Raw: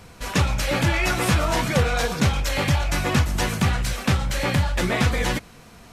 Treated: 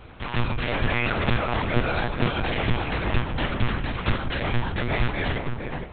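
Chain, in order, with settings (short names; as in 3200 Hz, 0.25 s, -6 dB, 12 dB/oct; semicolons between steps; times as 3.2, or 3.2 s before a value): dynamic EQ 480 Hz, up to -3 dB, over -36 dBFS, Q 2.4; in parallel at -2 dB: compressor, threshold -32 dBFS, peak gain reduction 16.5 dB; on the sum: darkening echo 0.458 s, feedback 34%, low-pass 1200 Hz, level -4 dB; monotone LPC vocoder at 8 kHz 120 Hz; gain -4 dB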